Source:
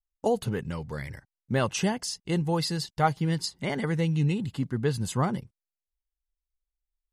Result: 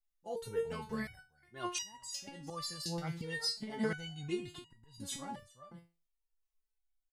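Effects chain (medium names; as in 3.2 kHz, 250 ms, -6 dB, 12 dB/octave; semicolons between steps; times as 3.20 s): delay 394 ms -20.5 dB; slow attack 283 ms; resonator arpeggio 2.8 Hz 170–960 Hz; trim +11 dB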